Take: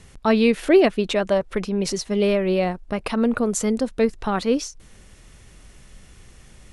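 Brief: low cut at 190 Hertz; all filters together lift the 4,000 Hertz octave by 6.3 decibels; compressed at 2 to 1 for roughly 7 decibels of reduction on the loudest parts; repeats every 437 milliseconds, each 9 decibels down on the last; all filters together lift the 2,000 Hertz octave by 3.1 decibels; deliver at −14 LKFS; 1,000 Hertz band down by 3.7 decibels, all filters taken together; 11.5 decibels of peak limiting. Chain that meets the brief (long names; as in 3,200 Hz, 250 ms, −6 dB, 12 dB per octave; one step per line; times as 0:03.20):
high-pass filter 190 Hz
parametric band 1,000 Hz −6.5 dB
parametric band 2,000 Hz +3 dB
parametric band 4,000 Hz +7.5 dB
downward compressor 2 to 1, threshold −23 dBFS
brickwall limiter −22 dBFS
repeating echo 437 ms, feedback 35%, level −9 dB
level +17 dB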